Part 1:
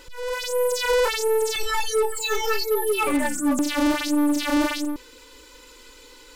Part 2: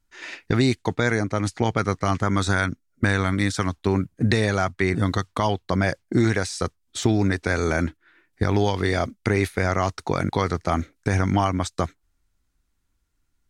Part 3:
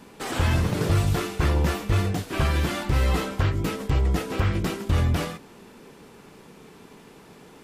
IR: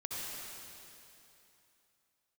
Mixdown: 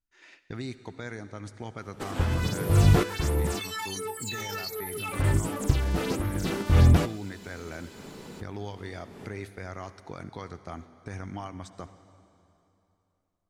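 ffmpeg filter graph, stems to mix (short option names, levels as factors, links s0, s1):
-filter_complex "[0:a]highpass=f=1000:p=1,adelay=2050,volume=0.631[s0];[1:a]volume=0.126,asplit=3[s1][s2][s3];[s2]volume=0.224[s4];[2:a]tiltshelf=f=970:g=3.5,adelay=1800,volume=1.26,asplit=3[s5][s6][s7];[s5]atrim=end=3.6,asetpts=PTS-STARTPTS,afade=t=out:st=3.596:d=0.004:c=hsin[s8];[s6]atrim=start=3.6:end=5.13,asetpts=PTS-STARTPTS,volume=0[s9];[s7]atrim=start=5.13,asetpts=PTS-STARTPTS,afade=t=in:d=0.004:c=hsin[s10];[s8][s9][s10]concat=n=3:v=0:a=1[s11];[s3]apad=whole_len=416153[s12];[s11][s12]sidechaincompress=threshold=0.00398:ratio=8:attack=44:release=208[s13];[s0][s1]amix=inputs=2:normalize=0,alimiter=level_in=1.19:limit=0.0631:level=0:latency=1:release=37,volume=0.841,volume=1[s14];[3:a]atrim=start_sample=2205[s15];[s4][s15]afir=irnorm=-1:irlink=0[s16];[s13][s14][s16]amix=inputs=3:normalize=0"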